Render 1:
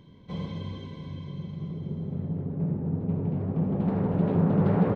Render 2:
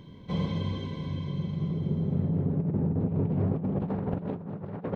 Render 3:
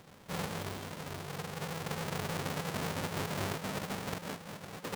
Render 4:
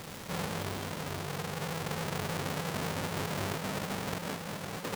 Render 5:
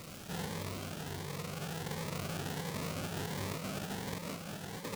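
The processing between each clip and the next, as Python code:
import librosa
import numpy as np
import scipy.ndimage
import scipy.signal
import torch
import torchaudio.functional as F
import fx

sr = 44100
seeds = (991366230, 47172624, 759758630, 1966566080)

y1 = fx.over_compress(x, sr, threshold_db=-29.0, ratio=-0.5)
y1 = y1 * librosa.db_to_amplitude(1.5)
y2 = fx.halfwave_hold(y1, sr)
y2 = fx.low_shelf(y2, sr, hz=290.0, db=-12.0)
y2 = y2 * librosa.db_to_amplitude(-6.5)
y3 = fx.dmg_crackle(y2, sr, seeds[0], per_s=600.0, level_db=-46.0)
y3 = fx.env_flatten(y3, sr, amount_pct=50)
y4 = fx.notch_cascade(y3, sr, direction='rising', hz=1.4)
y4 = y4 * librosa.db_to_amplitude(-3.0)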